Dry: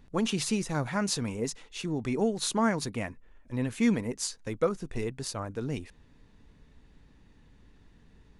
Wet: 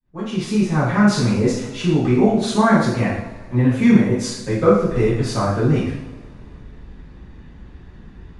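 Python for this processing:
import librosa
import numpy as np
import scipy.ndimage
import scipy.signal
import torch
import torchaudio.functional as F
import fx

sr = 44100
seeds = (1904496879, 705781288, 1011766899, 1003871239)

p1 = fx.fade_in_head(x, sr, length_s=1.11)
p2 = fx.notch(p1, sr, hz=460.0, q=13.0)
p3 = fx.rider(p2, sr, range_db=4, speed_s=0.5)
p4 = p2 + F.gain(torch.from_numpy(p3), 1.5).numpy()
p5 = fx.lowpass(p4, sr, hz=1600.0, slope=6)
p6 = fx.rev_double_slope(p5, sr, seeds[0], early_s=0.72, late_s=2.7, knee_db=-21, drr_db=-10.0)
y = F.gain(torch.from_numpy(p6), -1.5).numpy()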